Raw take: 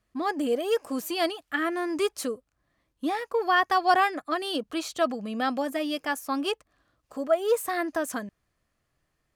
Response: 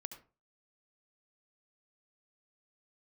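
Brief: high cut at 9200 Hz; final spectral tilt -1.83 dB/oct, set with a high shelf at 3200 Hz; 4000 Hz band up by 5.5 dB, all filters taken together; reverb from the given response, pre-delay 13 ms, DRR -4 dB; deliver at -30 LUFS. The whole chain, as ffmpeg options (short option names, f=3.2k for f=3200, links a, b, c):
-filter_complex "[0:a]lowpass=9.2k,highshelf=f=3.2k:g=4,equalizer=f=4k:t=o:g=4.5,asplit=2[a][b];[1:a]atrim=start_sample=2205,adelay=13[c];[b][c]afir=irnorm=-1:irlink=0,volume=7.5dB[d];[a][d]amix=inputs=2:normalize=0,volume=-8.5dB"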